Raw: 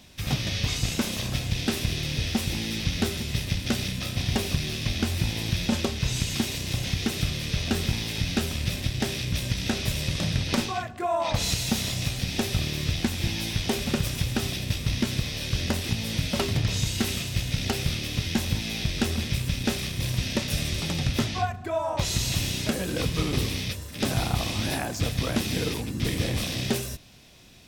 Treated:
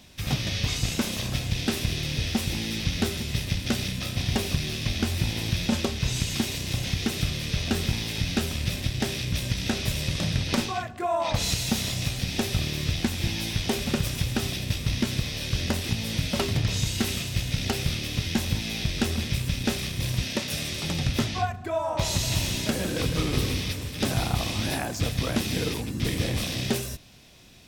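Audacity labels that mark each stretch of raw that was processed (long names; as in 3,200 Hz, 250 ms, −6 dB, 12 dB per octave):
4.590000	5.140000	delay throw 350 ms, feedback 70%, level −15.5 dB
20.250000	20.840000	high-pass filter 200 Hz 6 dB per octave
21.760000	24.110000	delay that swaps between a low-pass and a high-pass 157 ms, split 2,100 Hz, feedback 66%, level −7.5 dB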